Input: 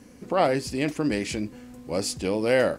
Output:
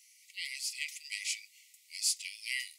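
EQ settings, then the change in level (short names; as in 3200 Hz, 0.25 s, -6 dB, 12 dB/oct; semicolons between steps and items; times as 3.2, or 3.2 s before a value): brick-wall FIR high-pass 1900 Hz; high shelf 3700 Hz +8 dB; -5.5 dB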